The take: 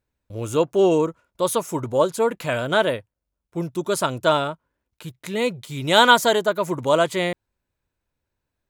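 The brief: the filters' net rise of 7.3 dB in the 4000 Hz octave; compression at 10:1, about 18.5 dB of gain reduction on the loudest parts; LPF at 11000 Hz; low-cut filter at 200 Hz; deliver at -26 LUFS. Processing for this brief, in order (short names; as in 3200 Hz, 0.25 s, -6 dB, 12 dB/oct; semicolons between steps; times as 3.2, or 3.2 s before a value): HPF 200 Hz; LPF 11000 Hz; bell 4000 Hz +9 dB; compressor 10:1, threshold -25 dBFS; gain +4.5 dB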